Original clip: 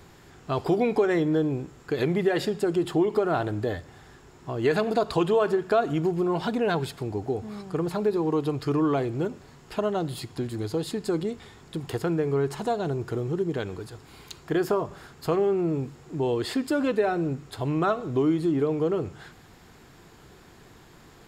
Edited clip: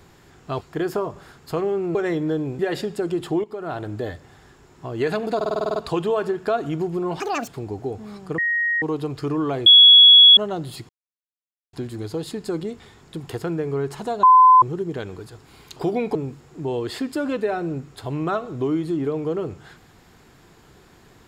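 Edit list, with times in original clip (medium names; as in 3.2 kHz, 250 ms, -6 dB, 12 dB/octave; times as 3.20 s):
0.61–1.00 s: swap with 14.36–15.70 s
1.64–2.23 s: delete
3.08–3.79 s: fade in equal-power, from -16.5 dB
5.00 s: stutter 0.05 s, 9 plays
6.44–6.92 s: speed 171%
7.82–8.26 s: bleep 1.88 kHz -18.5 dBFS
9.10–9.81 s: bleep 3.36 kHz -6 dBFS
10.33 s: insert silence 0.84 s
12.83–13.22 s: bleep 1.02 kHz -7.5 dBFS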